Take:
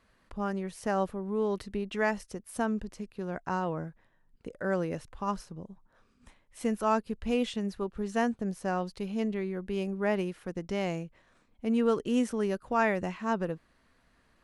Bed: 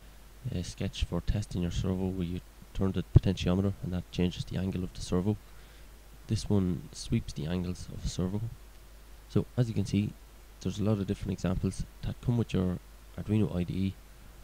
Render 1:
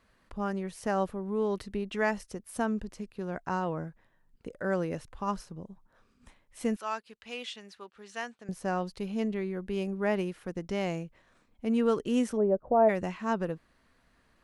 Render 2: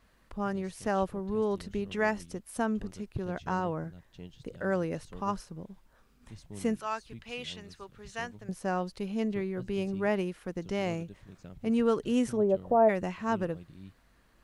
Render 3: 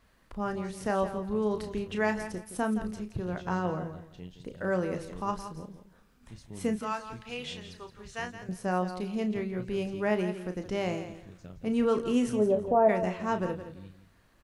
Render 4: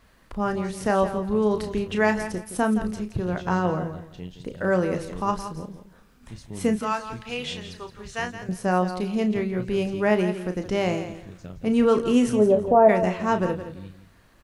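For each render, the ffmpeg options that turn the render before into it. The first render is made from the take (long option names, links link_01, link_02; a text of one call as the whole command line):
ffmpeg -i in.wav -filter_complex "[0:a]asettb=1/sr,asplit=3[link_01][link_02][link_03];[link_01]atrim=end=6.764[link_04];[link_02]atrim=start=6.76:end=8.49,asetpts=PTS-STARTPTS,afade=type=in:duration=0.004:curve=qsin,afade=type=out:start_time=1.726:duration=0.004:curve=qsin,bandpass=frequency=3300:width_type=q:width=0.61[link_05];[link_03]atrim=start=8.486[link_06];[link_04][link_05]acrossfade=duration=0.004:curve1=hsin:curve2=qsin[link_07];[link_07][link_06]acrossfade=duration=0.004:curve1=qsin:curve2=hsin,asplit=3[link_08][link_09][link_10];[link_08]afade=type=out:start_time=12.36:duration=0.02[link_11];[link_09]lowpass=frequency=630:width_type=q:width=3.1,afade=type=in:start_time=12.36:duration=0.02,afade=type=out:start_time=12.88:duration=0.02[link_12];[link_10]afade=type=in:start_time=12.88:duration=0.02[link_13];[link_11][link_12][link_13]amix=inputs=3:normalize=0" out.wav
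ffmpeg -i in.wav -i bed.wav -filter_complex "[1:a]volume=-17.5dB[link_01];[0:a][link_01]amix=inputs=2:normalize=0" out.wav
ffmpeg -i in.wav -filter_complex "[0:a]asplit=2[link_01][link_02];[link_02]adelay=33,volume=-8.5dB[link_03];[link_01][link_03]amix=inputs=2:normalize=0,aecho=1:1:169|338|507:0.282|0.0648|0.0149" out.wav
ffmpeg -i in.wav -af "volume=7dB" out.wav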